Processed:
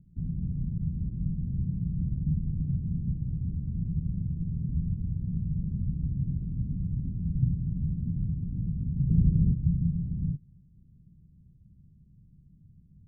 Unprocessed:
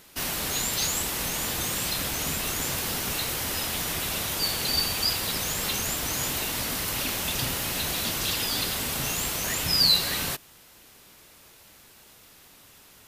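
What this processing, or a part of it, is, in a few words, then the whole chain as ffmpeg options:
the neighbour's flat through the wall: -filter_complex "[0:a]asplit=3[link_01][link_02][link_03];[link_01]afade=type=out:start_time=9.08:duration=0.02[link_04];[link_02]lowshelf=frequency=620:width_type=q:width=3:gain=8,afade=type=in:start_time=9.08:duration=0.02,afade=type=out:start_time=9.52:duration=0.02[link_05];[link_03]afade=type=in:start_time=9.52:duration=0.02[link_06];[link_04][link_05][link_06]amix=inputs=3:normalize=0,lowpass=frequency=160:width=0.5412,lowpass=frequency=160:width=1.3066,equalizer=frequency=170:width_type=o:width=0.6:gain=7,volume=8.5dB"

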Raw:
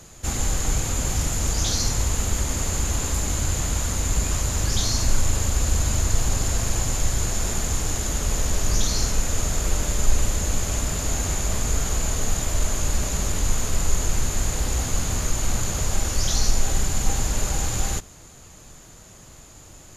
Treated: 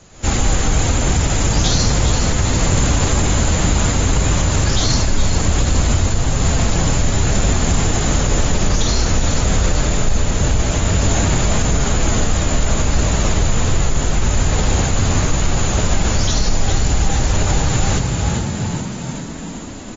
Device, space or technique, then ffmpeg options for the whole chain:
low-bitrate web radio: -filter_complex "[0:a]lowpass=6100,asettb=1/sr,asplit=3[link_01][link_02][link_03];[link_01]atrim=end=8.364[link_04];[link_02]atrim=start=8.36:end=9.7,asetpts=PTS-STARTPTS,afade=type=in:duration=0.004:curve=qsin,afade=type=out:start_time=1.336:duration=0.004:curve=qsin,asplit=2[link_05][link_06];[link_06]adelay=39,volume=-13.5dB[link_07];[link_05][link_07]amix=inputs=2:normalize=0,atrim=end_sample=59094[link_08];[link_03]atrim=start=9.696[link_09];[link_04][link_08]acrossfade=duration=0.004:curve1=hsin:curve2=qsin[link_10];[link_10][link_09]acrossfade=duration=0.004:curve1=qsin:curve2=hsin,asplit=9[link_11][link_12][link_13][link_14][link_15][link_16][link_17][link_18][link_19];[link_12]adelay=408,afreqshift=38,volume=-8dB[link_20];[link_13]adelay=816,afreqshift=76,volume=-12.4dB[link_21];[link_14]adelay=1224,afreqshift=114,volume=-16.9dB[link_22];[link_15]adelay=1632,afreqshift=152,volume=-21.3dB[link_23];[link_16]adelay=2040,afreqshift=190,volume=-25.7dB[link_24];[link_17]adelay=2448,afreqshift=228,volume=-30.2dB[link_25];[link_18]adelay=2856,afreqshift=266,volume=-34.6dB[link_26];[link_19]adelay=3264,afreqshift=304,volume=-39.1dB[link_27];[link_11][link_20][link_21][link_22][link_23][link_24][link_25][link_26][link_27]amix=inputs=9:normalize=0,dynaudnorm=framelen=120:gausssize=3:maxgain=10.5dB,alimiter=limit=-6.5dB:level=0:latency=1:release=38" -ar 48000 -c:a aac -b:a 24k

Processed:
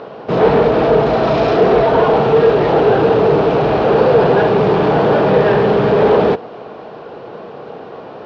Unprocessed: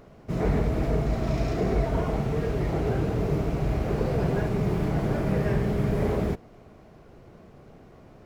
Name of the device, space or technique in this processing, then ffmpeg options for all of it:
overdrive pedal into a guitar cabinet: -filter_complex "[0:a]asplit=2[link_01][link_02];[link_02]highpass=frequency=720:poles=1,volume=22dB,asoftclip=type=tanh:threshold=-12dB[link_03];[link_01][link_03]amix=inputs=2:normalize=0,lowpass=frequency=7100:poles=1,volume=-6dB,highpass=78,equalizer=frequency=83:width_type=q:width=4:gain=-7,equalizer=frequency=470:width_type=q:width=4:gain=8,equalizer=frequency=860:width_type=q:width=4:gain=5,equalizer=frequency=2100:width_type=q:width=4:gain=-9,lowpass=frequency=4100:width=0.5412,lowpass=frequency=4100:width=1.3066,volume=6.5dB"

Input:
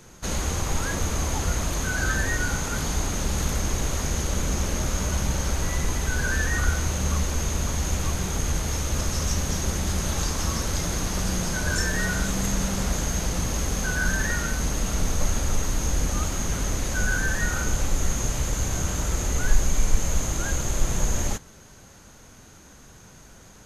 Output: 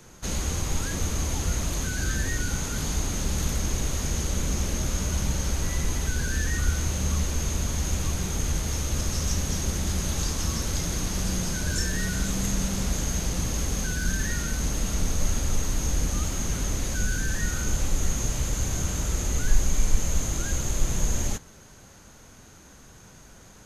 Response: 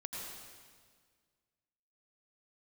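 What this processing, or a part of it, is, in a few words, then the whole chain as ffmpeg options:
one-band saturation: -filter_complex "[0:a]acrossover=split=420|2200[link_01][link_02][link_03];[link_02]asoftclip=type=tanh:threshold=-39dB[link_04];[link_01][link_04][link_03]amix=inputs=3:normalize=0,volume=-1dB"

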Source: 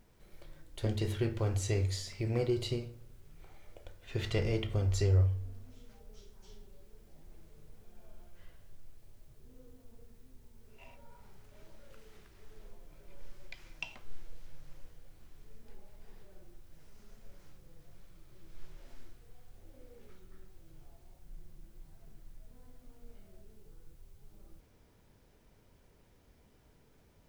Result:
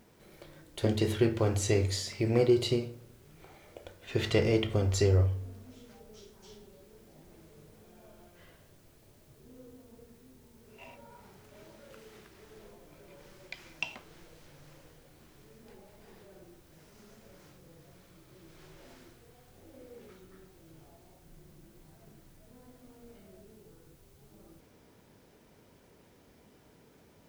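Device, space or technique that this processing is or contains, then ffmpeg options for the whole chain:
filter by subtraction: -filter_complex "[0:a]asplit=2[link_01][link_02];[link_02]lowpass=250,volume=-1[link_03];[link_01][link_03]amix=inputs=2:normalize=0,volume=6dB"

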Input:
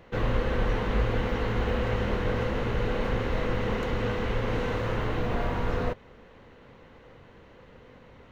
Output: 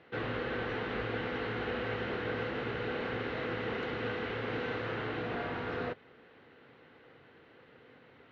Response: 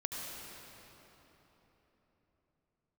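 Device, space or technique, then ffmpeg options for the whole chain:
kitchen radio: -af "highpass=170,equalizer=frequency=200:width_type=q:width=4:gain=-8,equalizer=frequency=560:width_type=q:width=4:gain=-6,equalizer=frequency=1000:width_type=q:width=4:gain=-7,equalizer=frequency=1500:width_type=q:width=4:gain=3,lowpass=frequency=4400:width=0.5412,lowpass=frequency=4400:width=1.3066,volume=-3dB"

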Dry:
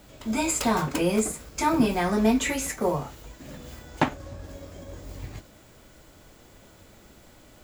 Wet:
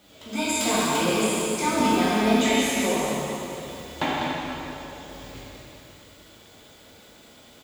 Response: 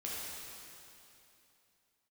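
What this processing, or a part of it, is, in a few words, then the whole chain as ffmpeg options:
PA in a hall: -filter_complex "[0:a]highpass=frequency=180:poles=1,equalizer=frequency=3500:width_type=o:width=0.69:gain=7.5,aecho=1:1:198:0.447[link_01];[1:a]atrim=start_sample=2205[link_02];[link_01][link_02]afir=irnorm=-1:irlink=0"

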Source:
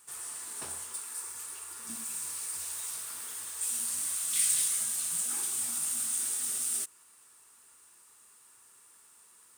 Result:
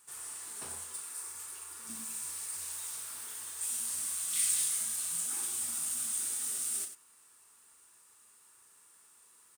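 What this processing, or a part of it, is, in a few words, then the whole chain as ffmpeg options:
slapback doubling: -filter_complex "[0:a]asplit=3[link_01][link_02][link_03];[link_02]adelay=36,volume=-8.5dB[link_04];[link_03]adelay=94,volume=-10.5dB[link_05];[link_01][link_04][link_05]amix=inputs=3:normalize=0,volume=-3.5dB"

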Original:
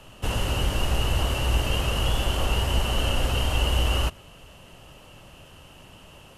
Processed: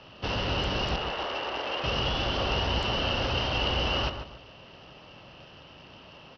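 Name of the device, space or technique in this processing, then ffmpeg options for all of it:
Bluetooth headset: -filter_complex "[0:a]lowpass=11000,asettb=1/sr,asplit=3[link_01][link_02][link_03];[link_01]atrim=end=0.964[link_04];[link_02]atrim=start=0.96:end=1.84,asetpts=PTS-STARTPTS,afade=type=in:duration=0.004:curve=qsin,afade=type=out:start_time=0.876:duration=0.004:curve=qsin,acrossover=split=330 2900:gain=0.0631 1 0.178[link_05][link_06][link_07];[link_05][link_06][link_07]amix=inputs=3:normalize=0[link_08];[link_03]atrim=start=1.836[link_09];[link_04][link_08]acrossfade=duration=0.004:curve1=hsin:curve2=qsin[link_10];[link_10][link_09]acrossfade=duration=0.004:curve1=qsin:curve2=hsin,highpass=frequency=150:poles=1,asplit=2[link_11][link_12];[link_12]adelay=142,lowpass=frequency=2000:poles=1,volume=-7.5dB,asplit=2[link_13][link_14];[link_14]adelay=142,lowpass=frequency=2000:poles=1,volume=0.31,asplit=2[link_15][link_16];[link_16]adelay=142,lowpass=frequency=2000:poles=1,volume=0.31,asplit=2[link_17][link_18];[link_18]adelay=142,lowpass=frequency=2000:poles=1,volume=0.31[link_19];[link_11][link_13][link_15][link_17][link_19]amix=inputs=5:normalize=0,aresample=16000,aresample=44100" -ar 44100 -c:a sbc -b:a 64k

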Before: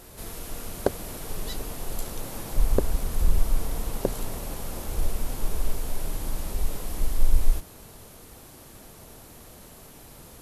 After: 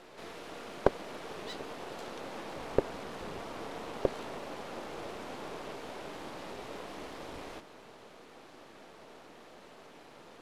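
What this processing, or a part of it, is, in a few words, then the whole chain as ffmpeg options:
crystal radio: -af "highpass=300,lowpass=3300,aeval=exprs='if(lt(val(0),0),0.447*val(0),val(0))':channel_layout=same,volume=2dB"

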